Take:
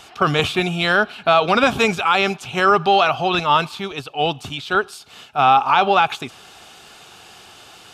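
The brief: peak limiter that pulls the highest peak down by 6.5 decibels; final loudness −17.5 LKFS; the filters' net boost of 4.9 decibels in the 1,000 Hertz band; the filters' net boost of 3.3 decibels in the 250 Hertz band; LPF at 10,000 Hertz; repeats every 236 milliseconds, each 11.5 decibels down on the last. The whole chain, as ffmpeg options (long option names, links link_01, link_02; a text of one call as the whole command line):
ffmpeg -i in.wav -af "lowpass=10000,equalizer=frequency=250:width_type=o:gain=4.5,equalizer=frequency=1000:width_type=o:gain=6.5,alimiter=limit=-4.5dB:level=0:latency=1,aecho=1:1:236|472|708:0.266|0.0718|0.0194,volume=-1.5dB" out.wav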